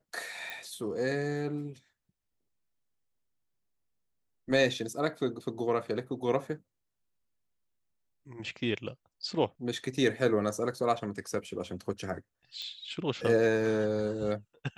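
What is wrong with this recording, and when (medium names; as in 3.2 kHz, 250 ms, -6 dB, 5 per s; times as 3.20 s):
0.50 s: pop
12.62 s: pop -27 dBFS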